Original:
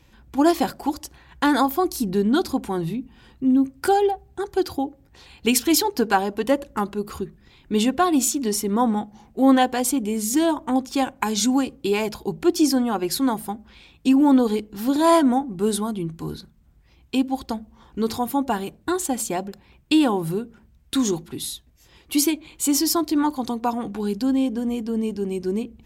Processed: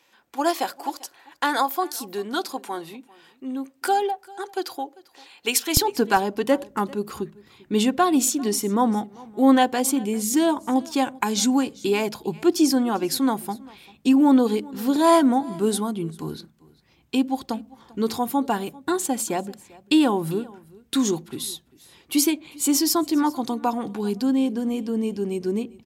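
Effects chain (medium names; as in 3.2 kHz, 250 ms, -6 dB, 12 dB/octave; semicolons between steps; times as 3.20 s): high-pass 530 Hz 12 dB/octave, from 5.77 s 130 Hz; delay 395 ms -22.5 dB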